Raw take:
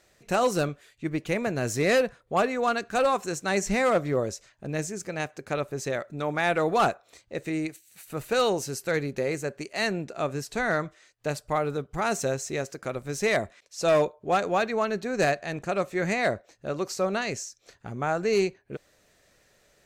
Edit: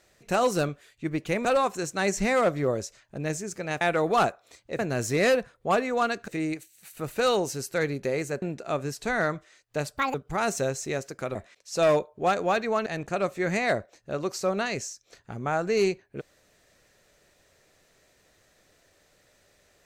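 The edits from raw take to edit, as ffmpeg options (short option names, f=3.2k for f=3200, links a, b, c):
-filter_complex "[0:a]asplit=10[a][b][c][d][e][f][g][h][i][j];[a]atrim=end=1.452[k];[b]atrim=start=2.938:end=5.302[l];[c]atrim=start=6.428:end=7.412[m];[d]atrim=start=1.448:end=2.942[n];[e]atrim=start=7.408:end=9.552[o];[f]atrim=start=9.918:end=11.474[p];[g]atrim=start=11.47:end=11.78,asetpts=PTS-STARTPTS,asetrate=79380,aresample=44100[q];[h]atrim=start=11.776:end=12.992[r];[i]atrim=start=13.408:end=14.922[s];[j]atrim=start=15.418[t];[k][l]acrossfade=d=0.004:c1=hsin:c2=hsin[u];[u][m]acrossfade=d=0.004:c1=hsin:c2=hsin[v];[v][n]acrossfade=d=0.004:c1=hsin:c2=hsin[w];[w][o]acrossfade=d=0.004:c1=hsin:c2=hsin[x];[x][p]acrossfade=d=0.004:c1=hsin:c2=hsin[y];[y][q]acrossfade=d=0.004:c1=hsin:c2=hsin[z];[z][r]acrossfade=d=0.004:c1=hsin:c2=hsin[aa];[aa][s]acrossfade=d=0.004:c1=hsin:c2=hsin[ab];[ab][t]acrossfade=d=0.004:c1=hsin:c2=hsin"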